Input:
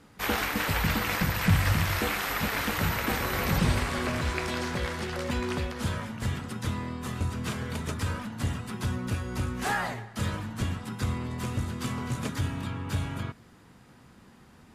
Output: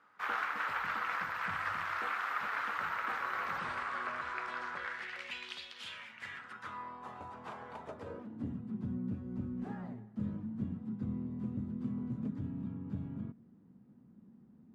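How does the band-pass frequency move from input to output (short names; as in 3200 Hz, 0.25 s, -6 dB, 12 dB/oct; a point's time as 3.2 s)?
band-pass, Q 2.7
4.75 s 1300 Hz
5.63 s 3800 Hz
7.07 s 850 Hz
7.77 s 850 Hz
8.57 s 210 Hz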